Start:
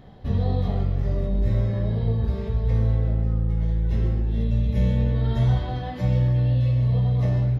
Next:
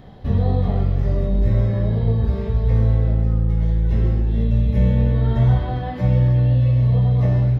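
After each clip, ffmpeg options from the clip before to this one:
-filter_complex "[0:a]acrossover=split=2600[s0][s1];[s1]acompressor=threshold=0.00141:ratio=4:attack=1:release=60[s2];[s0][s2]amix=inputs=2:normalize=0,volume=1.68"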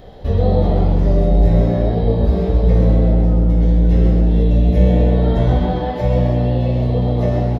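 -filter_complex "[0:a]equalizer=f=125:t=o:w=1:g=-9,equalizer=f=250:t=o:w=1:g=-8,equalizer=f=500:t=o:w=1:g=6,equalizer=f=1000:t=o:w=1:g=-6,equalizer=f=2000:t=o:w=1:g=-4,asplit=5[s0][s1][s2][s3][s4];[s1]adelay=128,afreqshift=120,volume=0.398[s5];[s2]adelay=256,afreqshift=240,volume=0.143[s6];[s3]adelay=384,afreqshift=360,volume=0.0519[s7];[s4]adelay=512,afreqshift=480,volume=0.0186[s8];[s0][s5][s6][s7][s8]amix=inputs=5:normalize=0,volume=2.24"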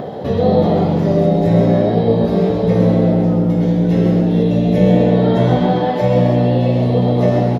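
-filter_complex "[0:a]highpass=f=130:w=0.5412,highpass=f=130:w=1.3066,acrossover=split=1400[s0][s1];[s0]acompressor=mode=upward:threshold=0.0794:ratio=2.5[s2];[s2][s1]amix=inputs=2:normalize=0,volume=1.88"

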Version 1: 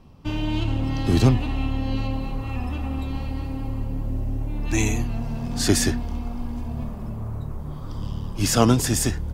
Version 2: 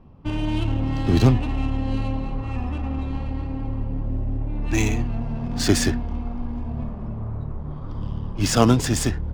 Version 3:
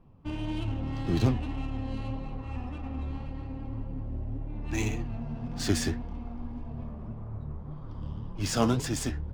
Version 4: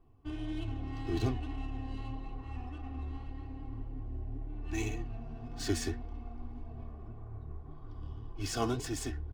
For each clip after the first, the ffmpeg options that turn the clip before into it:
-af "adynamicsmooth=sensitivity=5.5:basefreq=2100,volume=1.12"
-af "flanger=delay=5.8:depth=7.8:regen=52:speed=1.8:shape=sinusoidal,volume=0.596"
-af "aecho=1:1:2.7:0.83,volume=0.398"

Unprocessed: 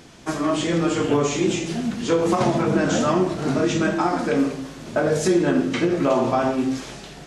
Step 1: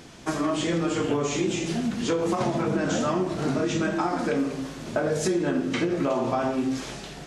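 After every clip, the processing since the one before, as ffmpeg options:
-af "acompressor=threshold=0.0708:ratio=3"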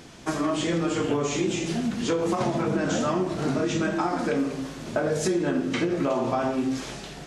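-af anull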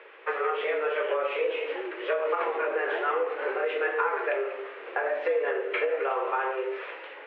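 -af "equalizer=f=610:t=o:w=0.79:g=-11.5,highpass=f=340:t=q:w=0.5412,highpass=f=340:t=q:w=1.307,lowpass=f=2500:t=q:w=0.5176,lowpass=f=2500:t=q:w=0.7071,lowpass=f=2500:t=q:w=1.932,afreqshift=130,volume=1.58"

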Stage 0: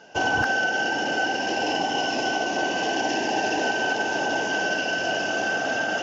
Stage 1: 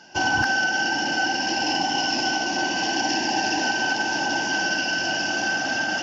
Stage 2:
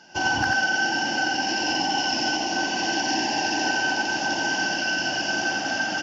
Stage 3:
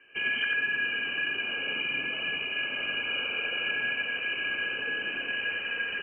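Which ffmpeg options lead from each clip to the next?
-af "superequalizer=7b=0.282:8b=0.447:10b=0.631:14b=2.24,volume=1.19"
-af "aecho=1:1:89:0.708,volume=0.75"
-af "lowpass=f=2700:t=q:w=0.5098,lowpass=f=2700:t=q:w=0.6013,lowpass=f=2700:t=q:w=0.9,lowpass=f=2700:t=q:w=2.563,afreqshift=-3200,volume=0.531"

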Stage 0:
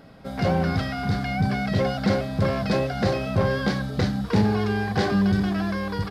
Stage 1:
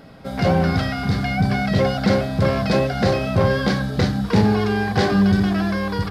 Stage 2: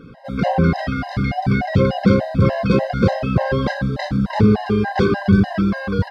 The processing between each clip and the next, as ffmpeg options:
-af "bandreject=f=51.33:t=h:w=4,bandreject=f=102.66:t=h:w=4,bandreject=f=153.99:t=h:w=4,bandreject=f=205.32:t=h:w=4,bandreject=f=256.65:t=h:w=4,bandreject=f=307.98:t=h:w=4,bandreject=f=359.31:t=h:w=4,bandreject=f=410.64:t=h:w=4,bandreject=f=461.97:t=h:w=4,bandreject=f=513.3:t=h:w=4,bandreject=f=564.63:t=h:w=4,bandreject=f=615.96:t=h:w=4,bandreject=f=667.29:t=h:w=4,bandreject=f=718.62:t=h:w=4,bandreject=f=769.95:t=h:w=4,bandreject=f=821.28:t=h:w=4,bandreject=f=872.61:t=h:w=4,bandreject=f=923.94:t=h:w=4,bandreject=f=975.27:t=h:w=4,bandreject=f=1026.6:t=h:w=4,bandreject=f=1077.93:t=h:w=4,bandreject=f=1129.26:t=h:w=4,bandreject=f=1180.59:t=h:w=4,bandreject=f=1231.92:t=h:w=4,bandreject=f=1283.25:t=h:w=4,bandreject=f=1334.58:t=h:w=4,bandreject=f=1385.91:t=h:w=4,bandreject=f=1437.24:t=h:w=4,bandreject=f=1488.57:t=h:w=4,bandreject=f=1539.9:t=h:w=4,bandreject=f=1591.23:t=h:w=4,bandreject=f=1642.56:t=h:w=4,bandreject=f=1693.89:t=h:w=4,bandreject=f=1745.22:t=h:w=4,bandreject=f=1796.55:t=h:w=4,bandreject=f=1847.88:t=h:w=4,bandreject=f=1899.21:t=h:w=4,volume=1.78"
-af "aemphasis=mode=reproduction:type=75kf,afftfilt=real='re*gt(sin(2*PI*3.4*pts/sr)*(1-2*mod(floor(b*sr/1024/530),2)),0)':imag='im*gt(sin(2*PI*3.4*pts/sr)*(1-2*mod(floor(b*sr/1024/530),2)),0)':win_size=1024:overlap=0.75,volume=1.78"

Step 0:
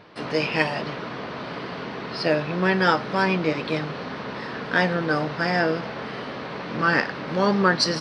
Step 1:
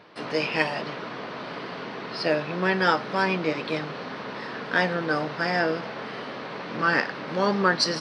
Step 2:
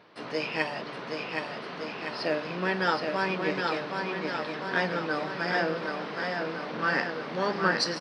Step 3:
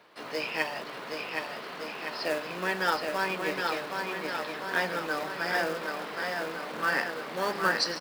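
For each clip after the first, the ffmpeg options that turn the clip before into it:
-af "highpass=f=200:p=1,volume=0.841"
-filter_complex "[0:a]bandreject=f=50:t=h:w=6,bandreject=f=100:t=h:w=6,bandreject=f=150:t=h:w=6,bandreject=f=200:t=h:w=6,asplit=2[s0][s1];[s1]aecho=0:1:770|1463|2087|2648|3153:0.631|0.398|0.251|0.158|0.1[s2];[s0][s2]amix=inputs=2:normalize=0,volume=0.562"
-filter_complex "[0:a]lowshelf=f=270:g=-10.5,acrossover=split=130|1400[s0][s1][s2];[s1]acrusher=bits=3:mode=log:mix=0:aa=0.000001[s3];[s0][s3][s2]amix=inputs=3:normalize=0"

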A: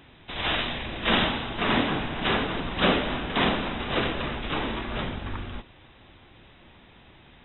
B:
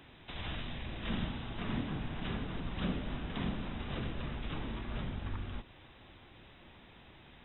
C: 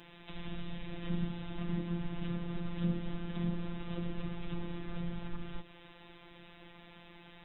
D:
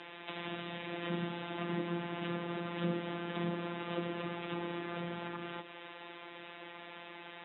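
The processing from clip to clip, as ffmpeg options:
-filter_complex "[0:a]acrossover=split=210[s0][s1];[s1]acompressor=threshold=0.00708:ratio=3[s2];[s0][s2]amix=inputs=2:normalize=0,volume=0.631"
-filter_complex "[0:a]acrossover=split=460[s0][s1];[s1]acompressor=threshold=0.00251:ratio=6[s2];[s0][s2]amix=inputs=2:normalize=0,afftfilt=real='hypot(re,im)*cos(PI*b)':imag='0':win_size=1024:overlap=0.75,volume=1.88"
-af "highpass=360,lowpass=3200,volume=2.82"

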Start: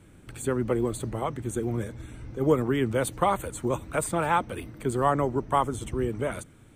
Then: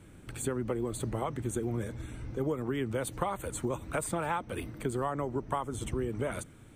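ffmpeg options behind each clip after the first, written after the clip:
-af "acompressor=threshold=0.0398:ratio=10"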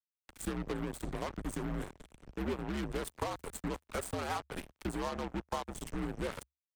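-af "flanger=delay=5.8:depth=9.5:regen=-80:speed=1.4:shape=sinusoidal,acrusher=bits=5:mix=0:aa=0.5,afreqshift=-72"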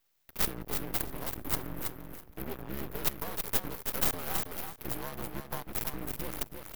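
-filter_complex "[0:a]aexciter=amount=11.4:drive=9:freq=11000,aeval=exprs='max(val(0),0)':c=same,asplit=2[s0][s1];[s1]aecho=0:1:325|650|975:0.531|0.0849|0.0136[s2];[s0][s2]amix=inputs=2:normalize=0"

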